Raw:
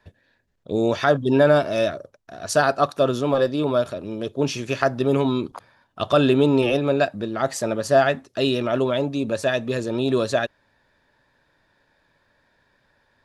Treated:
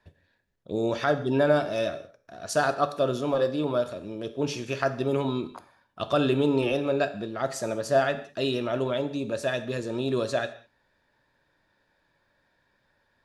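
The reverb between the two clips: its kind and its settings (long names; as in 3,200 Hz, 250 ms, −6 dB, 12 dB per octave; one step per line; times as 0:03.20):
reverb whose tail is shaped and stops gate 230 ms falling, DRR 9.5 dB
level −6 dB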